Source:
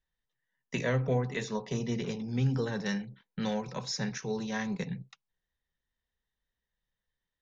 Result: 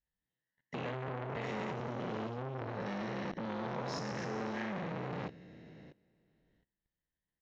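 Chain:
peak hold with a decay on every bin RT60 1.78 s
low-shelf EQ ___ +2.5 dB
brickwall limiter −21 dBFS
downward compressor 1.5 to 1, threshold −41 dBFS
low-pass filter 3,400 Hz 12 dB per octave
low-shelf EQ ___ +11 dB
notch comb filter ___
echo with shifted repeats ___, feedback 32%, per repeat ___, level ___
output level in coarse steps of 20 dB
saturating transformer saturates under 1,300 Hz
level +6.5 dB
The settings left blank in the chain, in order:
420 Hz, 110 Hz, 1,200 Hz, 112 ms, +140 Hz, −8 dB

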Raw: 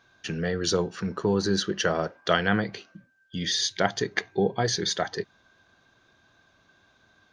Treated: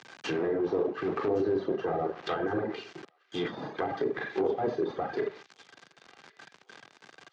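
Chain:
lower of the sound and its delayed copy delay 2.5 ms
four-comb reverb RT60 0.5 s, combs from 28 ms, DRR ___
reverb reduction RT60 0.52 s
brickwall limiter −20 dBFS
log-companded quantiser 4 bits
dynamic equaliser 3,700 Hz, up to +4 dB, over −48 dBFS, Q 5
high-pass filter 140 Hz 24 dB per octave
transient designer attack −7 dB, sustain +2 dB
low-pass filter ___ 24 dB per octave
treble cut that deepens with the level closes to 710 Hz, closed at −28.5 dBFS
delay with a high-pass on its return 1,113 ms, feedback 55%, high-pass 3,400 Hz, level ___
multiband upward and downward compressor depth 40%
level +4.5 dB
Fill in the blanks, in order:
3 dB, 6,600 Hz, −18 dB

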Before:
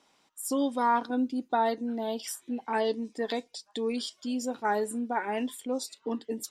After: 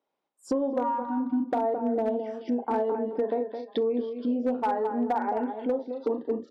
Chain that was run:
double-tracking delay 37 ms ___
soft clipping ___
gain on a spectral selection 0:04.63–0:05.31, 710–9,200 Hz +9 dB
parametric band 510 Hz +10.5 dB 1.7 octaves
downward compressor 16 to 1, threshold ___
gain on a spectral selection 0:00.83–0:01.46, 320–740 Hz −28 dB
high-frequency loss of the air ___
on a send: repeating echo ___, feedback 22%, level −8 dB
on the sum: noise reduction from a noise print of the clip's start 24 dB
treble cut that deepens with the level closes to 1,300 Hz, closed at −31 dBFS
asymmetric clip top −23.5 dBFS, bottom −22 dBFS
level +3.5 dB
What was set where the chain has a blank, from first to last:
−7 dB, −18.5 dBFS, −26 dBFS, 160 metres, 215 ms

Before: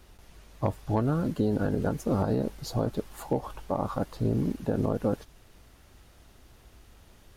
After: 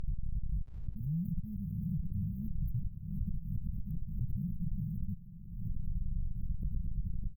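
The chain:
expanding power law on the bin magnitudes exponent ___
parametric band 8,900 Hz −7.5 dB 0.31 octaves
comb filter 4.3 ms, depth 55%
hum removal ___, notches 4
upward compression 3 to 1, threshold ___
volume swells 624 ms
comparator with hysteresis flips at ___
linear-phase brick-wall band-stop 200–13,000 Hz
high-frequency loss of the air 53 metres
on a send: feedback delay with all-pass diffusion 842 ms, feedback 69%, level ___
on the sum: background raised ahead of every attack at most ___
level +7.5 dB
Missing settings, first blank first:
2.4, 413 Hz, −36 dBFS, −41.5 dBFS, −15.5 dB, 63 dB per second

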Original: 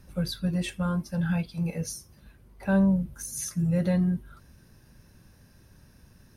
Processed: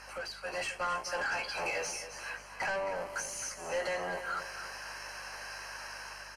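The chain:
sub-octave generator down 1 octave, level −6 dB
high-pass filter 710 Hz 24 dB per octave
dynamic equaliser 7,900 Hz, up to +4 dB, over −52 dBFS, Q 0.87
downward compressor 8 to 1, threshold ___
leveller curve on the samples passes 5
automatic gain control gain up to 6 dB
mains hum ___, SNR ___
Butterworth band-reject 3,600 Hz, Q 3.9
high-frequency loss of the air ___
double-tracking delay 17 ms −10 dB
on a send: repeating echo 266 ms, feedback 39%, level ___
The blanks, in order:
−48 dBFS, 50 Hz, 24 dB, 81 metres, −11 dB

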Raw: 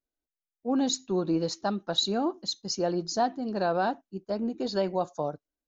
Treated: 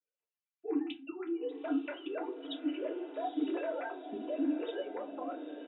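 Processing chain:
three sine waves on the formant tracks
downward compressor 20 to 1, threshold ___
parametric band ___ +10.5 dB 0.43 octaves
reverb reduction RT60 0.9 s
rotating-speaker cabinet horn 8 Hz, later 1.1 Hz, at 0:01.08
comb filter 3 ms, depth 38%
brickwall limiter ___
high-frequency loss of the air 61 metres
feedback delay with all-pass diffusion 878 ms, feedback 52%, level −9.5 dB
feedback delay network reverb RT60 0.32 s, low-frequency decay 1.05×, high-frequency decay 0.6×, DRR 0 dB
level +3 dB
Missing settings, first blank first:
−33 dBFS, 2,700 Hz, −36.5 dBFS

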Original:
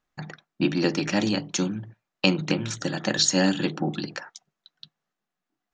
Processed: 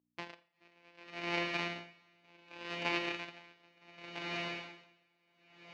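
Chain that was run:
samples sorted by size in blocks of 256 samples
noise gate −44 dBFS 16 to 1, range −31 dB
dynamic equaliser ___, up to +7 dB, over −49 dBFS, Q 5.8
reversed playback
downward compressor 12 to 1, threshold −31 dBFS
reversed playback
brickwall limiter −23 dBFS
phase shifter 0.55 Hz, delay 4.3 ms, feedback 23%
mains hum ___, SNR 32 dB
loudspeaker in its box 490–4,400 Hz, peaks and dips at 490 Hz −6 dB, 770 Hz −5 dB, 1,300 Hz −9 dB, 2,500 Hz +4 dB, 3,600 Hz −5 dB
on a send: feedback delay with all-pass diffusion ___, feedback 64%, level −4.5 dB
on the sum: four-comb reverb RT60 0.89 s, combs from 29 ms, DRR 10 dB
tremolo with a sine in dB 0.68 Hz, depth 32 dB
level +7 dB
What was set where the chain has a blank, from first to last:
2,400 Hz, 60 Hz, 466 ms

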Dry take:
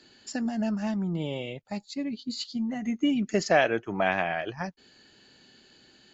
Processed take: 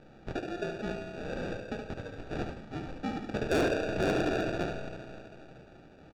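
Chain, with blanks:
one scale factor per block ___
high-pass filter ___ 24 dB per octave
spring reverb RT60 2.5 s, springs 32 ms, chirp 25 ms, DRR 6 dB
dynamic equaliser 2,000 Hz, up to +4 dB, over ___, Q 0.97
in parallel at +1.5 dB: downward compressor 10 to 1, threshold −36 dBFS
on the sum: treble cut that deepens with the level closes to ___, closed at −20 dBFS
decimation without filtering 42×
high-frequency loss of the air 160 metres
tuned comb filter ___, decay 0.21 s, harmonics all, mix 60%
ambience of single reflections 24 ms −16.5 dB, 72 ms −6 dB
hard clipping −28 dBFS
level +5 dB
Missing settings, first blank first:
7 bits, 620 Hz, −41 dBFS, 2,000 Hz, 790 Hz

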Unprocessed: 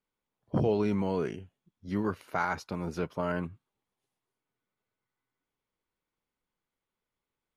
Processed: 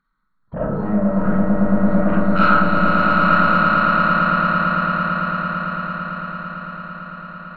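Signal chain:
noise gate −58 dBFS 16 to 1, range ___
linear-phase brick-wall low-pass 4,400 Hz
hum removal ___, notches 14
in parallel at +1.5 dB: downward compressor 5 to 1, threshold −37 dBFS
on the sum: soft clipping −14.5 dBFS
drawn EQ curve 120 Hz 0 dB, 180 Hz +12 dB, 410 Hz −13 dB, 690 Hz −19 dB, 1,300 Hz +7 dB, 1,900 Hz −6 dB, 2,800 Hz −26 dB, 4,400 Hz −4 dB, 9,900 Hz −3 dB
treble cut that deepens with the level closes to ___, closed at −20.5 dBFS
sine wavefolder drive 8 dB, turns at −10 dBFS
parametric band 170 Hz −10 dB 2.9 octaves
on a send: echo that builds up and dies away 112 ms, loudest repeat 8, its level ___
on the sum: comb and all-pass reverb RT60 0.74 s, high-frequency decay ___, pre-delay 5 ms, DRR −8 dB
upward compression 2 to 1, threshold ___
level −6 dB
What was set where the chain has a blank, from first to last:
−41 dB, 99.23 Hz, 1,400 Hz, −5 dB, 0.35×, −22 dBFS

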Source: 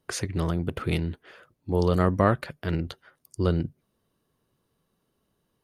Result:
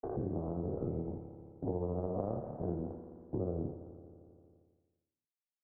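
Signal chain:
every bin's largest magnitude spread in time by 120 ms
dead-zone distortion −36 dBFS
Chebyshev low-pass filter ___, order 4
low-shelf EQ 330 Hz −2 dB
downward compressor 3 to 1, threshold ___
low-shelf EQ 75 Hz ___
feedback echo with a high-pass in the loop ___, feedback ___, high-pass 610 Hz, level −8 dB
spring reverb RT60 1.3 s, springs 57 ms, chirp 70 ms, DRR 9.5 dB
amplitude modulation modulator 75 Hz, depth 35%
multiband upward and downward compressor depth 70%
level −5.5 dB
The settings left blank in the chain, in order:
790 Hz, −24 dBFS, −2.5 dB, 84 ms, 64%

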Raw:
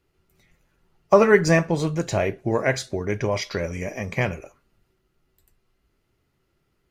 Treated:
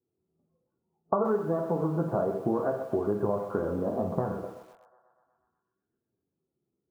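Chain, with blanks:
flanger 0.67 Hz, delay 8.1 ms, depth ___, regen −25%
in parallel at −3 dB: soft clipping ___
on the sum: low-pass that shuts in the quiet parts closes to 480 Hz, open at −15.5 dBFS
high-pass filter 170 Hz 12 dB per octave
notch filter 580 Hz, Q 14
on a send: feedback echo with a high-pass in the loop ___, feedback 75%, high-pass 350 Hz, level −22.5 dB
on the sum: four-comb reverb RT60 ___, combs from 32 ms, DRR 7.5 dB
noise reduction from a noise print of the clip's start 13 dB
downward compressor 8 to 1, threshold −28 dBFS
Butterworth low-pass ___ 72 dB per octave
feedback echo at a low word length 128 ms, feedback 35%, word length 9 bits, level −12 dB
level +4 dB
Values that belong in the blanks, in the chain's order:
7.3 ms, −14 dBFS, 122 ms, 0.33 s, 1,400 Hz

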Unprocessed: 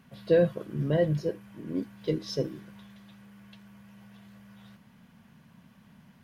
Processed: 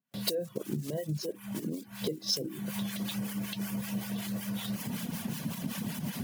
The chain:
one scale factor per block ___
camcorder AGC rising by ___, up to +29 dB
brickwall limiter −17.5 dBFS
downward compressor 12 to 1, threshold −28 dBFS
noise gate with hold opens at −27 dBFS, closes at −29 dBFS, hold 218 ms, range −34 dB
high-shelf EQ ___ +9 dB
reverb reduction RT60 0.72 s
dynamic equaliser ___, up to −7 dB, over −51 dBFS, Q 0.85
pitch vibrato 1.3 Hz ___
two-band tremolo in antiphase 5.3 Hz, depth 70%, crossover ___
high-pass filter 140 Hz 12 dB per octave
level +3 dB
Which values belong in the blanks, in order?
5 bits, 60 dB per second, 5,000 Hz, 1,400 Hz, 5.2 cents, 810 Hz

